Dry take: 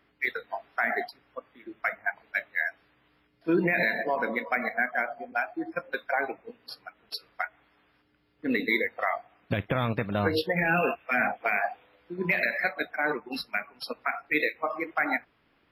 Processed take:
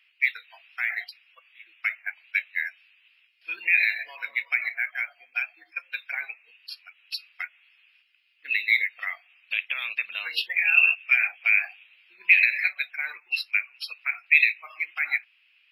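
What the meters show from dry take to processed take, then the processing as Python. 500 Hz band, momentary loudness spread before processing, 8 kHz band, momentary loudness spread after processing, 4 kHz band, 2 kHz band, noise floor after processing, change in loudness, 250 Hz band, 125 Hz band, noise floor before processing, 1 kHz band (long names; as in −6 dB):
below −25 dB, 14 LU, can't be measured, 18 LU, +5.5 dB, +5.5 dB, −64 dBFS, +5.0 dB, below −35 dB, below −40 dB, −68 dBFS, −14.0 dB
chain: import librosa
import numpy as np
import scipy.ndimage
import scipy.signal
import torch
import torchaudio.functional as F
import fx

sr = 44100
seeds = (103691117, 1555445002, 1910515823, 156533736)

y = fx.highpass_res(x, sr, hz=2600.0, q=7.2)
y = fx.notch(y, sr, hz=3500.0, q=28.0)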